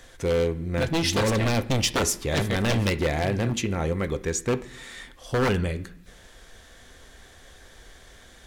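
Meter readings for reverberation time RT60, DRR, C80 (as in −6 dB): 0.65 s, 9.5 dB, 19.5 dB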